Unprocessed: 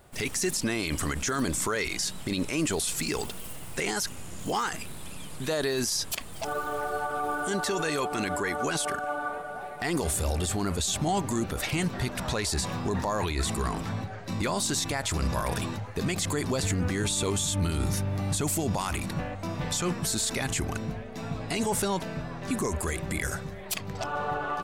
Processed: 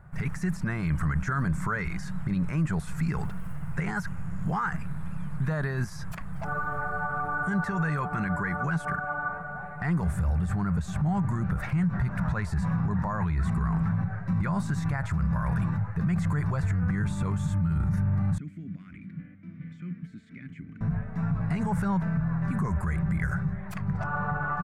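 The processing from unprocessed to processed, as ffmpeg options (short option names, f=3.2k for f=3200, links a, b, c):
-filter_complex "[0:a]asettb=1/sr,asplit=3[a][b][c];[a]atrim=end=16.404[d];[b]atrim=start=16.4:end=16.84,asetpts=PTS-STARTPTS,afade=t=in:d=0.004:c=qsin,afade=t=out:st=0.436:d=0.004:c=qsin,equalizer=f=210:t=o:w=0.77:g=-10[e];[c]atrim=start=16.836[f];[d][e]acrossfade=d=0.004:c1=hsin:c2=qsin[g];[g][f]acrossfade=d=0.004:c1=qsin:c2=hsin,asettb=1/sr,asplit=3[h][i][j];[h]atrim=end=18.384[k];[i]atrim=start=18.38:end=20.81,asetpts=PTS-STARTPTS,afade=t=in:d=0.004:c=qsin,afade=t=out:st=2.426:d=0.004:c=qsin,asplit=3[l][m][n];[l]bandpass=f=270:t=q:w=8,volume=0dB[o];[m]bandpass=f=2.29k:t=q:w=8,volume=-6dB[p];[n]bandpass=f=3.01k:t=q:w=8,volume=-9dB[q];[o][p][q]amix=inputs=3:normalize=0[r];[j]atrim=start=20.806[s];[k][r]acrossfade=d=0.004:c1=hsin:c2=qsin[t];[t][s]acrossfade=d=0.004:c1=qsin:c2=hsin,firequalizer=gain_entry='entry(100,0);entry(170,8);entry(240,-13);entry(380,-17);entry(900,-8);entry(1500,-3);entry(3100,-27)':delay=0.05:min_phase=1,alimiter=level_in=3dB:limit=-24dB:level=0:latency=1:release=45,volume=-3dB,volume=7.5dB"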